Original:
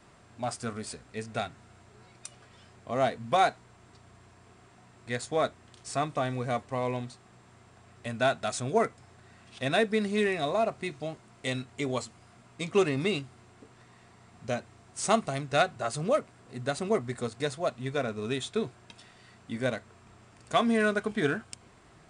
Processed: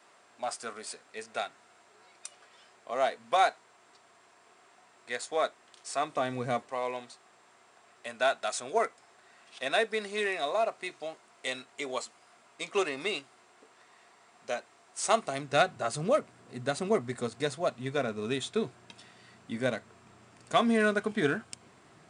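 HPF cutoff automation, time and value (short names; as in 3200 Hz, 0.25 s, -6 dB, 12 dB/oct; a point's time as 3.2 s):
5.96 s 490 Hz
6.49 s 120 Hz
6.73 s 490 Hz
15.07 s 490 Hz
15.59 s 130 Hz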